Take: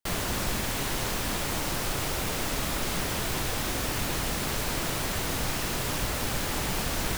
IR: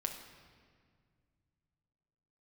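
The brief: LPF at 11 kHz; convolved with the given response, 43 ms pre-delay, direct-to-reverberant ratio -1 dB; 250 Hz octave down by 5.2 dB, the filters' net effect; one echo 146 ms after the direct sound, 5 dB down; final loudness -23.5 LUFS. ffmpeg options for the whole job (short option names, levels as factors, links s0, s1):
-filter_complex "[0:a]lowpass=11000,equalizer=f=250:t=o:g=-7.5,aecho=1:1:146:0.562,asplit=2[s0][s1];[1:a]atrim=start_sample=2205,adelay=43[s2];[s1][s2]afir=irnorm=-1:irlink=0,volume=1.06[s3];[s0][s3]amix=inputs=2:normalize=0,volume=1.33"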